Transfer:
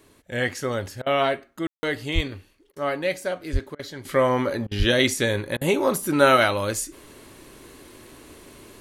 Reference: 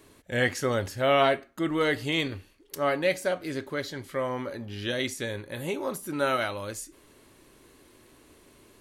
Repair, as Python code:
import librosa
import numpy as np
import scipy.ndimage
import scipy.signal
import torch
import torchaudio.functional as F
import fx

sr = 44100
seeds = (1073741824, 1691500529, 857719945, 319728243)

y = fx.highpass(x, sr, hz=140.0, slope=24, at=(2.14, 2.26), fade=0.02)
y = fx.highpass(y, sr, hz=140.0, slope=24, at=(3.52, 3.64), fade=0.02)
y = fx.highpass(y, sr, hz=140.0, slope=24, at=(4.78, 4.9), fade=0.02)
y = fx.fix_ambience(y, sr, seeds[0], print_start_s=2.33, print_end_s=2.83, start_s=1.67, end_s=1.83)
y = fx.fix_interpolate(y, sr, at_s=(1.02, 2.72, 3.75, 4.67, 5.57), length_ms=42.0)
y = fx.fix_level(y, sr, at_s=4.05, step_db=-10.0)